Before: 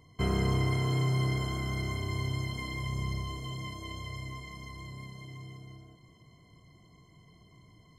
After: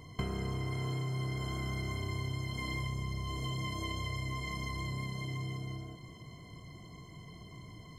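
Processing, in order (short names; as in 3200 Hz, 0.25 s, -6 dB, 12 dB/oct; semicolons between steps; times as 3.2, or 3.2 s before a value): compressor 12:1, threshold -41 dBFS, peak gain reduction 17 dB; gain +8 dB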